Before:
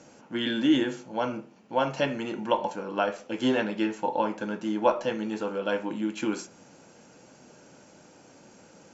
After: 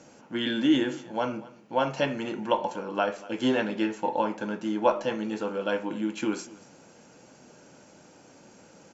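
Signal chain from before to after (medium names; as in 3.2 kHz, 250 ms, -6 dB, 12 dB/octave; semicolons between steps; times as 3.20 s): delay 237 ms -20.5 dB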